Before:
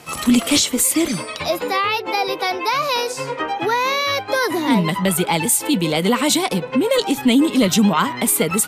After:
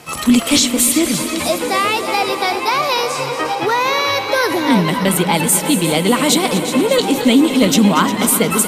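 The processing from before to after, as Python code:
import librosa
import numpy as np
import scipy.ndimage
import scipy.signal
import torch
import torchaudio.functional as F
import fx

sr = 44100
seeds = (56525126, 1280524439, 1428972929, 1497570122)

y = fx.reverse_delay(x, sr, ms=296, wet_db=-12.5)
y = fx.echo_heads(y, sr, ms=118, heads='second and third', feedback_pct=70, wet_db=-13.0)
y = F.gain(torch.from_numpy(y), 2.5).numpy()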